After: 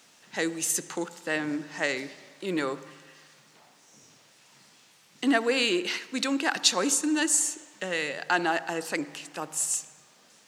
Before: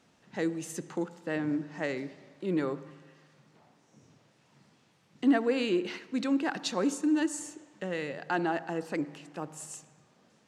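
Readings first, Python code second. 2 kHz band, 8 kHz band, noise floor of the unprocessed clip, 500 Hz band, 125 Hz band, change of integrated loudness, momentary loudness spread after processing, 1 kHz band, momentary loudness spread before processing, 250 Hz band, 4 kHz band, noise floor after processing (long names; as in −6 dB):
+8.5 dB, +15.5 dB, −66 dBFS, +1.5 dB, −3.5 dB, +4.5 dB, 13 LU, +5.0 dB, 14 LU, −0.5 dB, +12.0 dB, −59 dBFS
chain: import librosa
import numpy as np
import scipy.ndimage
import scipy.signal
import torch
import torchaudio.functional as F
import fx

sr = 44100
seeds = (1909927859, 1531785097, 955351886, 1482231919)

y = fx.tilt_eq(x, sr, slope=3.5)
y = F.gain(torch.from_numpy(y), 5.5).numpy()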